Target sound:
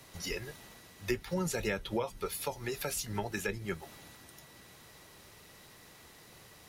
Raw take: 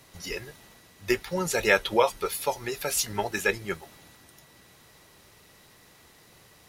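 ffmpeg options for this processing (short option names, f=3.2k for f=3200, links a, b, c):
-filter_complex "[0:a]acrossover=split=260[a][b];[b]acompressor=threshold=-35dB:ratio=5[c];[a][c]amix=inputs=2:normalize=0"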